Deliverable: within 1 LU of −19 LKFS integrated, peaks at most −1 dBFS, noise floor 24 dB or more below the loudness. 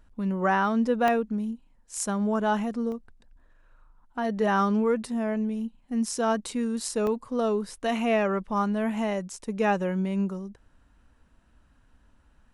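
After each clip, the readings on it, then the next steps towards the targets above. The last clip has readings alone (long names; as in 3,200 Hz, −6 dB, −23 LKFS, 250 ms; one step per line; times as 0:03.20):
number of dropouts 3; longest dropout 1.1 ms; integrated loudness −27.0 LKFS; sample peak −12.0 dBFS; target loudness −19.0 LKFS
→ repair the gap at 0:01.08/0:02.92/0:07.07, 1.1 ms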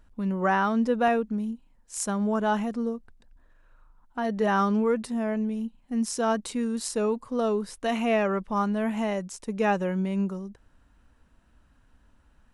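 number of dropouts 0; integrated loudness −27.0 LKFS; sample peak −12.0 dBFS; target loudness −19.0 LKFS
→ level +8 dB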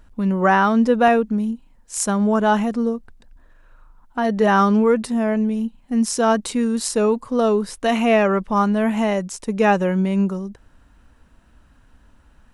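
integrated loudness −19.0 LKFS; sample peak −4.0 dBFS; background noise floor −54 dBFS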